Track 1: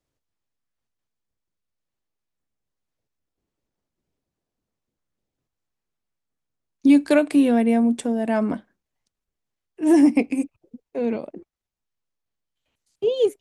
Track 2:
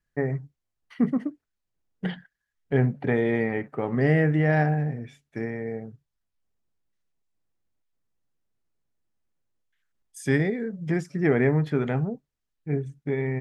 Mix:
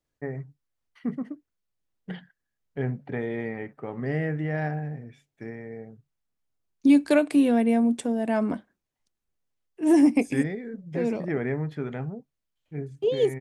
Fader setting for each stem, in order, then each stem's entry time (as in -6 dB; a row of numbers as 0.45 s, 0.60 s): -3.0 dB, -7.0 dB; 0.00 s, 0.05 s